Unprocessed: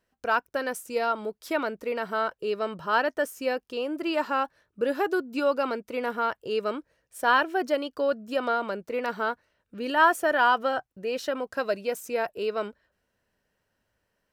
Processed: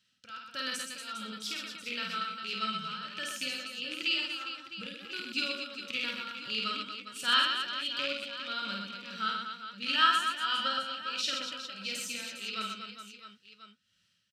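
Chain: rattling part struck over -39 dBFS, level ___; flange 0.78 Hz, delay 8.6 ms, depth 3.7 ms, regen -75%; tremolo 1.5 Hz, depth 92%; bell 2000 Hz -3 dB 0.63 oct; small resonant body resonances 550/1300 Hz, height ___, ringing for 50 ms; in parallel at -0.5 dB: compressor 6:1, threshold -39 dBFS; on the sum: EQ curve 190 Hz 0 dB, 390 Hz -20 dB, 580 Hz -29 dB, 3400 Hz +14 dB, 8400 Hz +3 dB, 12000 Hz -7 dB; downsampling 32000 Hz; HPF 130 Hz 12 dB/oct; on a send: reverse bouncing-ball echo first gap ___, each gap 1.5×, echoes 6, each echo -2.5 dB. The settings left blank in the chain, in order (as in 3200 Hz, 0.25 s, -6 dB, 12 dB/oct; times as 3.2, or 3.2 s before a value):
-25 dBFS, 15 dB, 50 ms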